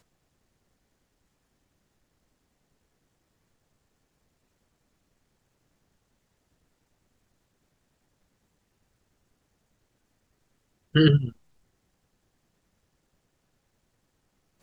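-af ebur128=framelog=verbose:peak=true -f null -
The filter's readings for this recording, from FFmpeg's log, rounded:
Integrated loudness:
  I:         -21.7 LUFS
  Threshold: -32.9 LUFS
Loudness range:
  LRA:         5.7 LU
  Threshold: -49.2 LUFS
  LRA low:   -34.4 LUFS
  LRA high:  -28.7 LUFS
True peak:
  Peak:       -6.2 dBFS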